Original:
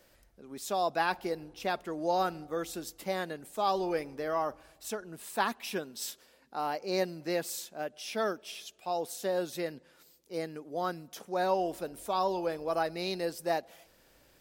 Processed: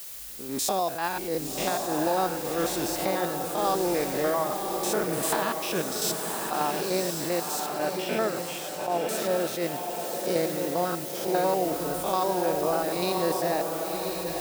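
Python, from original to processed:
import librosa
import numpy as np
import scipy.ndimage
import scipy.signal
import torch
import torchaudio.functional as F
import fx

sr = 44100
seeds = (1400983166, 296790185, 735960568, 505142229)

p1 = fx.spec_steps(x, sr, hold_ms=100)
p2 = fx.recorder_agc(p1, sr, target_db=-21.0, rise_db_per_s=19.0, max_gain_db=30)
p3 = fx.dmg_noise_colour(p2, sr, seeds[0], colour='blue', level_db=-44.0)
p4 = fx.savgol(p3, sr, points=25, at=(7.66, 9.09))
p5 = p4 + fx.echo_diffused(p4, sr, ms=1068, feedback_pct=45, wet_db=-4, dry=0)
p6 = fx.attack_slew(p5, sr, db_per_s=100.0)
y = p6 * librosa.db_to_amplitude(3.5)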